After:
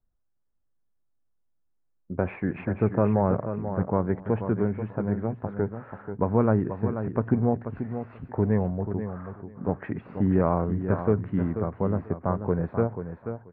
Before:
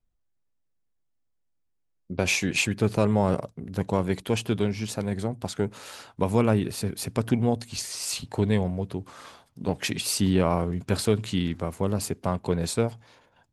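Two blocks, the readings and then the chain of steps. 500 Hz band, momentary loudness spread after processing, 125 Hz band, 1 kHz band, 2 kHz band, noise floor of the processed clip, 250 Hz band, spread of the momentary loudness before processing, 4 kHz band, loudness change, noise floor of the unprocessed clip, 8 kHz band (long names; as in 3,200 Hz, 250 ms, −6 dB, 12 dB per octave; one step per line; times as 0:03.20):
+0.5 dB, 11 LU, +0.5 dB, +0.5 dB, −9.0 dB, −71 dBFS, +0.5 dB, 9 LU, below −30 dB, −0.5 dB, −73 dBFS, below −40 dB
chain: Butterworth low-pass 1,700 Hz 36 dB per octave
on a send: repeating echo 486 ms, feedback 16%, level −9 dB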